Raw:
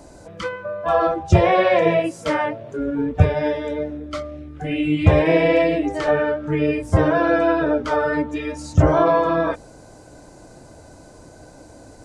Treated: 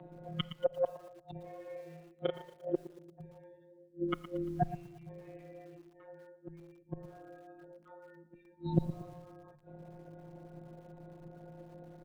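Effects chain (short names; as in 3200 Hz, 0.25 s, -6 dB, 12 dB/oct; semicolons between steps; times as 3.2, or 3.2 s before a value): formant sharpening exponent 1.5; spectral noise reduction 13 dB; in parallel at -1 dB: compressor 20:1, threshold -23 dBFS, peak gain reduction 17 dB; on the sum: resonant low shelf 120 Hz -10 dB, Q 3; flipped gate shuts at -17 dBFS, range -36 dB; robotiser 183 Hz; frequency shift -21 Hz; 1.64–2.41 doubler 36 ms -4 dB; feedback echo 0.115 s, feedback 55%, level -19.5 dB; on a send at -20 dB: reverb RT60 1.0 s, pre-delay 8 ms; on the sum: downsampling 8000 Hz; lo-fi delay 0.116 s, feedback 35%, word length 9-bit, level -14 dB; gain +2 dB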